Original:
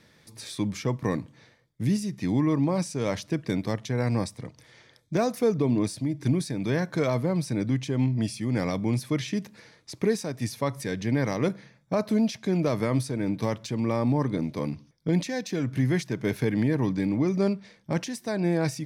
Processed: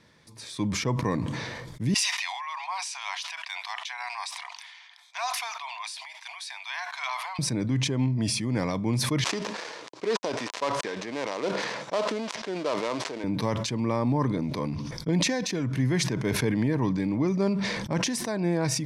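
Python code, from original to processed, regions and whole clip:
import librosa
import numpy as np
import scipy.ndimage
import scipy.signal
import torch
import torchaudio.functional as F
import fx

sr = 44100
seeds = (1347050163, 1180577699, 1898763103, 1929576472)

y = fx.chain(x, sr, fx.cheby_ripple_highpass(hz=710.0, ripple_db=3),
    fx.peak_eq(hz=2900.0, db=8.0, octaves=1.3), at=(1.94, 7.39))
y = fx.chain(y, sr, fx.dead_time(dead_ms=0.19),
    fx.cheby1_bandpass(low_hz=460.0, high_hz=6000.0, order=2), at=(9.24, 13.24))
y = scipy.signal.sosfilt(scipy.signal.butter(2, 10000.0, 'lowpass', fs=sr, output='sos'), y)
y = fx.peak_eq(y, sr, hz=1000.0, db=7.0, octaves=0.26)
y = fx.sustainer(y, sr, db_per_s=28.0)
y = y * 10.0 ** (-1.5 / 20.0)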